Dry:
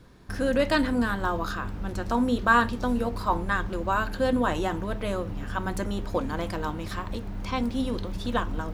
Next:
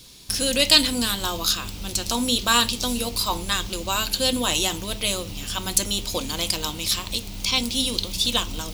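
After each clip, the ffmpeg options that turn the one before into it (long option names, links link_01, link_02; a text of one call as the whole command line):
ffmpeg -i in.wav -af "aexciter=amount=12.9:drive=3.9:freq=2500,volume=-1.5dB" out.wav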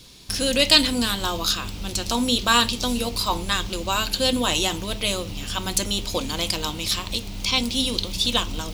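ffmpeg -i in.wav -af "highshelf=frequency=6400:gain=-8,volume=2dB" out.wav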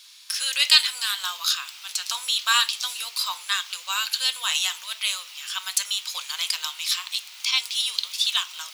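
ffmpeg -i in.wav -af "highpass=frequency=1200:width=0.5412,highpass=frequency=1200:width=1.3066" out.wav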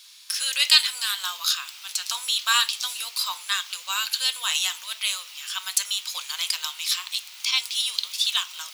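ffmpeg -i in.wav -af "highshelf=frequency=8200:gain=3.5,volume=-1dB" out.wav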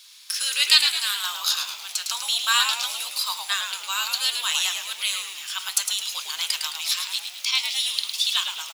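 ffmpeg -i in.wav -filter_complex "[0:a]asplit=6[link_01][link_02][link_03][link_04][link_05][link_06];[link_02]adelay=107,afreqshift=-120,volume=-6.5dB[link_07];[link_03]adelay=214,afreqshift=-240,volume=-13.6dB[link_08];[link_04]adelay=321,afreqshift=-360,volume=-20.8dB[link_09];[link_05]adelay=428,afreqshift=-480,volume=-27.9dB[link_10];[link_06]adelay=535,afreqshift=-600,volume=-35dB[link_11];[link_01][link_07][link_08][link_09][link_10][link_11]amix=inputs=6:normalize=0" out.wav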